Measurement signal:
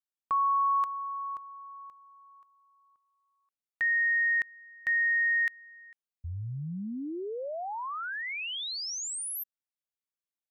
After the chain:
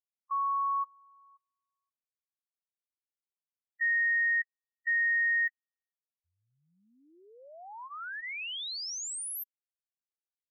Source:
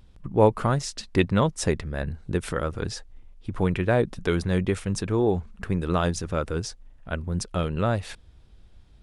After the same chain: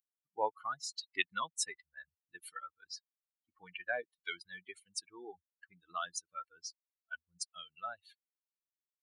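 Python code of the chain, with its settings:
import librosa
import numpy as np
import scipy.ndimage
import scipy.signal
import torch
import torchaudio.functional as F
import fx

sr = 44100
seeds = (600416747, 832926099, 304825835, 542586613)

y = fx.bin_expand(x, sr, power=3.0)
y = scipy.signal.sosfilt(scipy.signal.butter(2, 1200.0, 'highpass', fs=sr, output='sos'), y)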